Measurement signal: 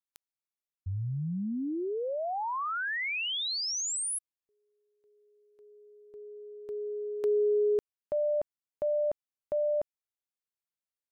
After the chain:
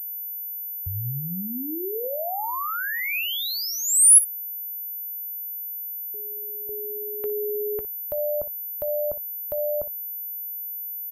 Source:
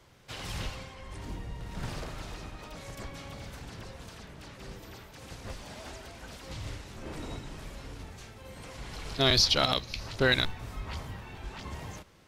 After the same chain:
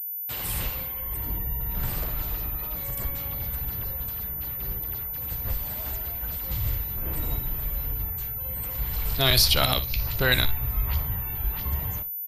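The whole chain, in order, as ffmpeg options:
ffmpeg -i in.wav -filter_complex "[0:a]afftfilt=real='re*gte(hypot(re,im),0.00282)':imag='im*gte(hypot(re,im),0.00282)':win_size=1024:overlap=0.75,agate=range=-21dB:threshold=-52dB:ratio=16:release=95:detection=rms,aeval=exprs='val(0)+0.00141*sin(2*PI*14000*n/s)':channel_layout=same,adynamicequalizer=threshold=0.00398:dfrequency=2500:dqfactor=6.4:tfrequency=2500:tqfactor=6.4:attack=5:release=100:ratio=0.417:range=1.5:mode=boostabove:tftype=bell,acrossover=split=420[link_01][link_02];[link_01]acompressor=threshold=-37dB:ratio=5:attack=39:release=48:knee=2.83:detection=peak[link_03];[link_03][link_02]amix=inputs=2:normalize=0,aexciter=amount=10.7:drive=5.4:freq=8700,asubboost=boost=3.5:cutoff=130,aecho=1:1:16|59:0.15|0.188,volume=3dB" out.wav

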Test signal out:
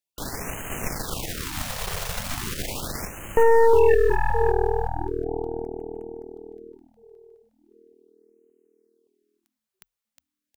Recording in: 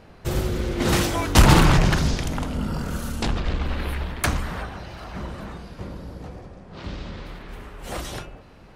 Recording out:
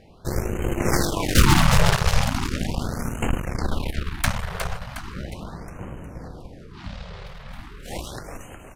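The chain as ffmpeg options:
ffmpeg -i in.wav -filter_complex "[0:a]asplit=7[link_01][link_02][link_03][link_04][link_05][link_06][link_07];[link_02]adelay=361,afreqshift=-40,volume=-6dB[link_08];[link_03]adelay=722,afreqshift=-80,volume=-12.2dB[link_09];[link_04]adelay=1083,afreqshift=-120,volume=-18.4dB[link_10];[link_05]adelay=1444,afreqshift=-160,volume=-24.6dB[link_11];[link_06]adelay=1805,afreqshift=-200,volume=-30.8dB[link_12];[link_07]adelay=2166,afreqshift=-240,volume=-37dB[link_13];[link_01][link_08][link_09][link_10][link_11][link_12][link_13]amix=inputs=7:normalize=0,aeval=exprs='0.75*(cos(1*acos(clip(val(0)/0.75,-1,1)))-cos(1*PI/2))+0.211*(cos(3*acos(clip(val(0)/0.75,-1,1)))-cos(3*PI/2))+0.075*(cos(5*acos(clip(val(0)/0.75,-1,1)))-cos(5*PI/2))+0.00473*(cos(6*acos(clip(val(0)/0.75,-1,1)))-cos(6*PI/2))+0.0841*(cos(8*acos(clip(val(0)/0.75,-1,1)))-cos(8*PI/2))':channel_layout=same,afftfilt=real='re*(1-between(b*sr/1024,260*pow(4500/260,0.5+0.5*sin(2*PI*0.38*pts/sr))/1.41,260*pow(4500/260,0.5+0.5*sin(2*PI*0.38*pts/sr))*1.41))':imag='im*(1-between(b*sr/1024,260*pow(4500/260,0.5+0.5*sin(2*PI*0.38*pts/sr))/1.41,260*pow(4500/260,0.5+0.5*sin(2*PI*0.38*pts/sr))*1.41))':win_size=1024:overlap=0.75,volume=1.5dB" out.wav

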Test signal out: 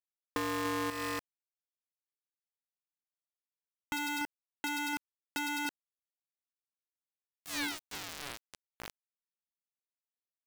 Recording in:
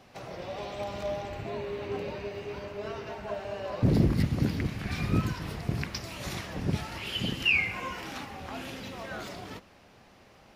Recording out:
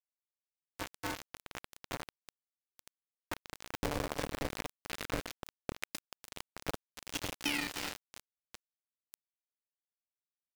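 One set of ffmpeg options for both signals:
ffmpeg -i in.wav -filter_complex "[0:a]highpass=250,equalizer=frequency=370:width_type=q:width=4:gain=-5,equalizer=frequency=530:width_type=q:width=4:gain=-4,equalizer=frequency=1300:width_type=q:width=4:gain=-4,equalizer=frequency=1900:width_type=q:width=4:gain=8,lowpass=frequency=7400:width=0.5412,lowpass=frequency=7400:width=1.3066,asplit=2[link_01][link_02];[link_02]adelay=291.5,volume=-10dB,highshelf=frequency=4000:gain=-6.56[link_03];[link_01][link_03]amix=inputs=2:normalize=0,aeval=exprs='0.282*(cos(1*acos(clip(val(0)/0.282,-1,1)))-cos(1*PI/2))+0.00224*(cos(4*acos(clip(val(0)/0.282,-1,1)))-cos(4*PI/2))+0.00178*(cos(7*acos(clip(val(0)/0.282,-1,1)))-cos(7*PI/2))+0.0224*(cos(8*acos(clip(val(0)/0.282,-1,1)))-cos(8*PI/2))':channel_layout=same,equalizer=frequency=2900:width=0.32:gain=-6.5,aeval=exprs='val(0)*gte(abs(val(0)),0.0282)':channel_layout=same,acompressor=threshold=-34dB:ratio=6,aeval=exprs='val(0)*sgn(sin(2*PI*290*n/s))':channel_layout=same,volume=3dB" out.wav

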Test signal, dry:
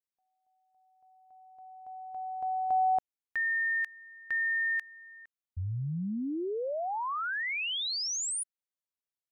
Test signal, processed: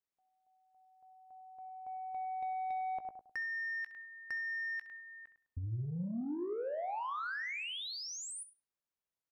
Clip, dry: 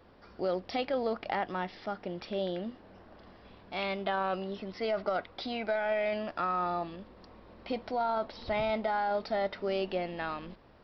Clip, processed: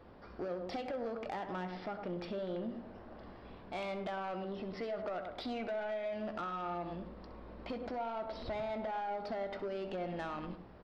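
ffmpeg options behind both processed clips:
ffmpeg -i in.wav -filter_complex "[0:a]asplit=2[link_01][link_02];[link_02]adelay=103,lowpass=frequency=1400:poles=1,volume=-10.5dB,asplit=2[link_03][link_04];[link_04]adelay=103,lowpass=frequency=1400:poles=1,volume=0.26,asplit=2[link_05][link_06];[link_06]adelay=103,lowpass=frequency=1400:poles=1,volume=0.26[link_07];[link_03][link_05][link_07]amix=inputs=3:normalize=0[link_08];[link_01][link_08]amix=inputs=2:normalize=0,acompressor=threshold=-38dB:ratio=6:attack=47:release=130:knee=6:detection=rms,highshelf=frequency=2500:gain=-9,asoftclip=type=tanh:threshold=-35.5dB,asplit=2[link_09][link_10];[link_10]aecho=0:1:17|65:0.211|0.211[link_11];[link_09][link_11]amix=inputs=2:normalize=0,volume=2.5dB" out.wav

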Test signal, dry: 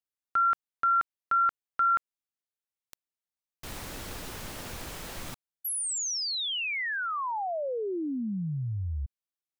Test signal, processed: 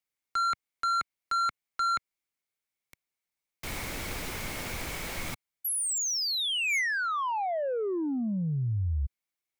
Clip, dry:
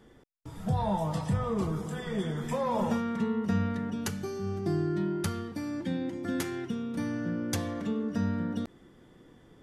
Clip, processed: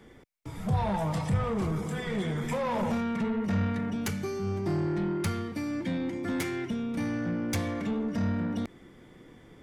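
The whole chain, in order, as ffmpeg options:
ffmpeg -i in.wav -filter_complex "[0:a]equalizer=frequency=2200:width=6.5:gain=10.5,acrossover=split=110[link_01][link_02];[link_02]asoftclip=type=tanh:threshold=-29dB[link_03];[link_01][link_03]amix=inputs=2:normalize=0,volume=3.5dB" out.wav

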